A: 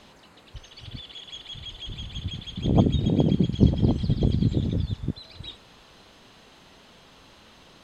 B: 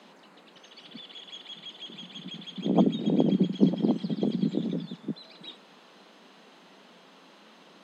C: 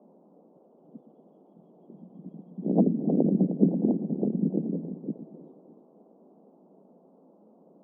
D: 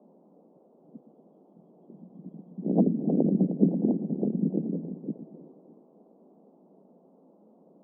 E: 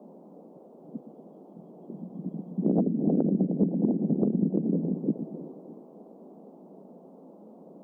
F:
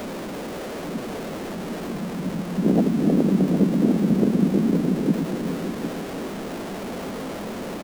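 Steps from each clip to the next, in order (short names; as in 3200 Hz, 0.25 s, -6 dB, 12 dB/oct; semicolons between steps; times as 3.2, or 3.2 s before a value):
steep high-pass 170 Hz 72 dB/oct; high shelf 3600 Hz -7.5 dB
inverse Chebyshev low-pass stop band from 1800 Hz, stop band 50 dB; split-band echo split 320 Hz, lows 0.117 s, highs 0.308 s, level -10.5 dB
air absorption 390 m
compressor 12:1, threshold -29 dBFS, peak gain reduction 15 dB; gain +8.5 dB
zero-crossing step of -31.5 dBFS; outdoor echo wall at 130 m, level -8 dB; gain +4 dB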